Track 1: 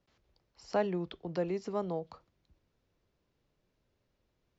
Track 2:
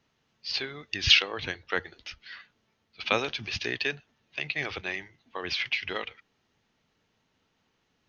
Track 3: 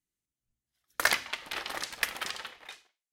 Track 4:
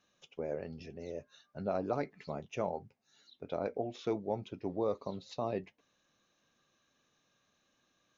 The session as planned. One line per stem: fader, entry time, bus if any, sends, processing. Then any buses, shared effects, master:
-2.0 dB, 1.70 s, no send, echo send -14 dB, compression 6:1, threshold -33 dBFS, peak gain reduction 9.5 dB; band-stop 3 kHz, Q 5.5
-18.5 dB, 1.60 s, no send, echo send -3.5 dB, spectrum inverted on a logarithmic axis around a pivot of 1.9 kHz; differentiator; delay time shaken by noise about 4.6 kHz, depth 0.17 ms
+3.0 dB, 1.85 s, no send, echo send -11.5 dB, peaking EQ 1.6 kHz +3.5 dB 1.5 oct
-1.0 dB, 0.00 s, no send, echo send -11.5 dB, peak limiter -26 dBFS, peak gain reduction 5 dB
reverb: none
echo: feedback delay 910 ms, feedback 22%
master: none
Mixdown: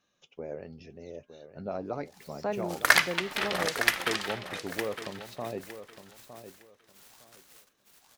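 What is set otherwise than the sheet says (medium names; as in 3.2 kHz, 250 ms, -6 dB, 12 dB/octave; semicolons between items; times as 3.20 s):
stem 1: missing compression 6:1, threshold -33 dBFS, peak gain reduction 9.5 dB; stem 2 -18.5 dB -> -12.5 dB; stem 4: missing peak limiter -26 dBFS, peak gain reduction 5 dB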